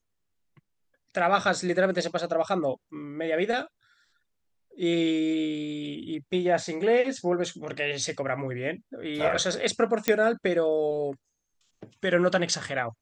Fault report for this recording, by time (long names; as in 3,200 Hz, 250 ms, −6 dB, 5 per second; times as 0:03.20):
0:10.08: click −7 dBFS